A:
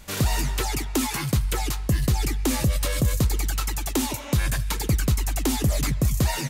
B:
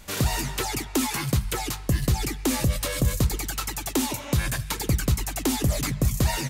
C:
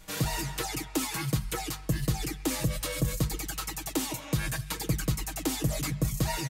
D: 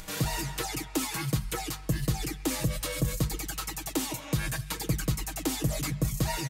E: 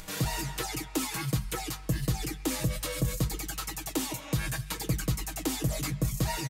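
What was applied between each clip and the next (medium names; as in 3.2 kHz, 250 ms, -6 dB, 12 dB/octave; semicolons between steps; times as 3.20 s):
hum notches 50/100/150/200 Hz
comb 6.3 ms, depth 70%; trim -6.5 dB
upward compressor, threshold -36 dBFS
doubling 16 ms -13.5 dB; trim -1 dB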